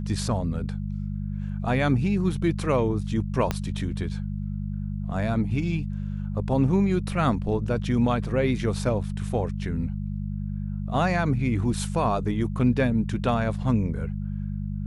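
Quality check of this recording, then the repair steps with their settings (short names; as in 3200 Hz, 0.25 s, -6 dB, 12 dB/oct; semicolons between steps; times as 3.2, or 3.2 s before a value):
hum 50 Hz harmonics 4 -30 dBFS
3.51 pop -10 dBFS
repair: de-click; de-hum 50 Hz, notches 4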